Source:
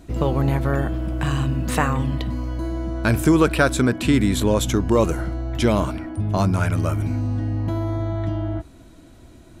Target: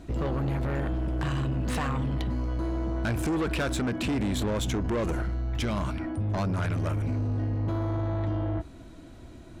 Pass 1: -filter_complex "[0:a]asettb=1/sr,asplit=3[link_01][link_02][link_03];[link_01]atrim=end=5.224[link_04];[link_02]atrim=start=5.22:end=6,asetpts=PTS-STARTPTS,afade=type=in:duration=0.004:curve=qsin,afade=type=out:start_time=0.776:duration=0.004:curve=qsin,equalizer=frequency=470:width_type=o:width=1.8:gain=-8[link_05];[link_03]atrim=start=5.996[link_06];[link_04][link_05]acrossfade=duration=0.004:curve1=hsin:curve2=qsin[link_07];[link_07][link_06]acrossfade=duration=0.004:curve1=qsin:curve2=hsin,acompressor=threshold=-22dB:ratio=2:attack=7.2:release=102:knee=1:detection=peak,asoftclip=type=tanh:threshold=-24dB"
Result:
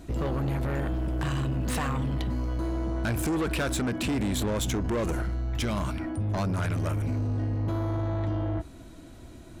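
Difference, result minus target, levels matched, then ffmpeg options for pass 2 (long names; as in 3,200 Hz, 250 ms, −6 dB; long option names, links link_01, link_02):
8,000 Hz band +4.0 dB
-filter_complex "[0:a]asettb=1/sr,asplit=3[link_01][link_02][link_03];[link_01]atrim=end=5.224[link_04];[link_02]atrim=start=5.22:end=6,asetpts=PTS-STARTPTS,afade=type=in:duration=0.004:curve=qsin,afade=type=out:start_time=0.776:duration=0.004:curve=qsin,equalizer=frequency=470:width_type=o:width=1.8:gain=-8[link_05];[link_03]atrim=start=5.996[link_06];[link_04][link_05]acrossfade=duration=0.004:curve1=hsin:curve2=qsin[link_07];[link_07][link_06]acrossfade=duration=0.004:curve1=qsin:curve2=hsin,acompressor=threshold=-22dB:ratio=2:attack=7.2:release=102:knee=1:detection=peak,highshelf=frequency=8300:gain=-11,asoftclip=type=tanh:threshold=-24dB"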